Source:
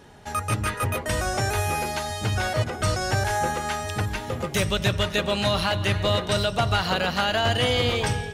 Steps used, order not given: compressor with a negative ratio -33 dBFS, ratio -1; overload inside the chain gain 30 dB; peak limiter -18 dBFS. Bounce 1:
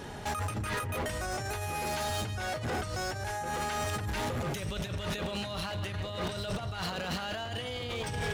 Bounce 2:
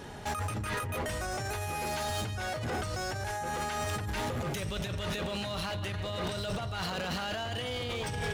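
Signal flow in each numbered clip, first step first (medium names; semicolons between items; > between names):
compressor with a negative ratio > peak limiter > overload inside the chain; peak limiter > compressor with a negative ratio > overload inside the chain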